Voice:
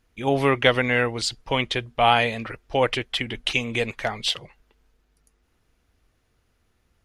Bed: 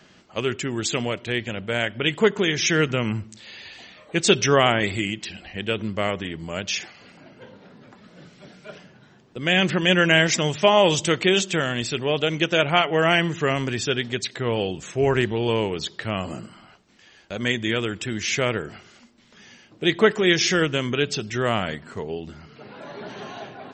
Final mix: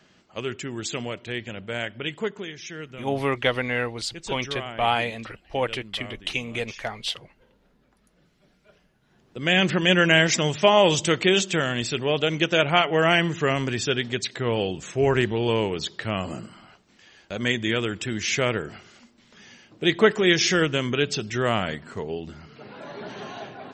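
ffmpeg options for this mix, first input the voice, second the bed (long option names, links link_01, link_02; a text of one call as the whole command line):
ffmpeg -i stem1.wav -i stem2.wav -filter_complex "[0:a]adelay=2800,volume=-4.5dB[link_01];[1:a]volume=11dB,afade=type=out:start_time=1.83:duration=0.76:silence=0.266073,afade=type=in:start_time=9.02:duration=0.42:silence=0.149624[link_02];[link_01][link_02]amix=inputs=2:normalize=0" out.wav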